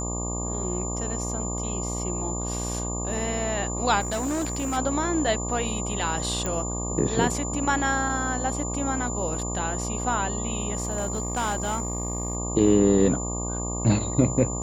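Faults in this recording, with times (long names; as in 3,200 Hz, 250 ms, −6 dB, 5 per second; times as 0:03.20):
mains buzz 60 Hz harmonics 20 −31 dBFS
whistle 7,100 Hz −32 dBFS
0:04.00–0:04.78: clipping −23.5 dBFS
0:06.46: click −15 dBFS
0:10.75–0:12.37: clipping −21.5 dBFS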